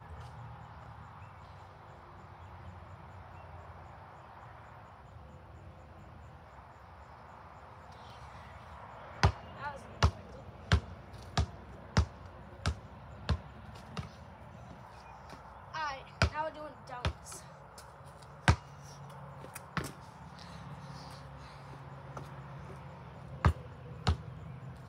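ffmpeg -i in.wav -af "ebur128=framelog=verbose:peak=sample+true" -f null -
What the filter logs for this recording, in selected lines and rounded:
Integrated loudness:
  I:         -38.5 LUFS
  Threshold: -50.3 LUFS
Loudness range:
  LRA:        15.9 LU
  Threshold: -60.3 LUFS
  LRA low:   -52.0 LUFS
  LRA high:  -36.1 LUFS
Sample peak:
  Peak:       -7.8 dBFS
True peak:
  Peak:       -7.7 dBFS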